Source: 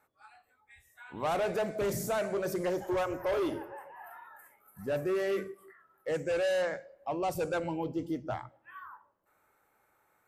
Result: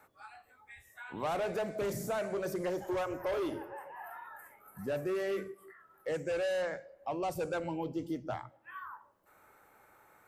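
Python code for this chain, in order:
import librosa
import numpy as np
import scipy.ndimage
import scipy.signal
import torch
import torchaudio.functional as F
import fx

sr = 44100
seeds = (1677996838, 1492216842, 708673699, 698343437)

y = fx.band_squash(x, sr, depth_pct=40)
y = F.gain(torch.from_numpy(y), -3.0).numpy()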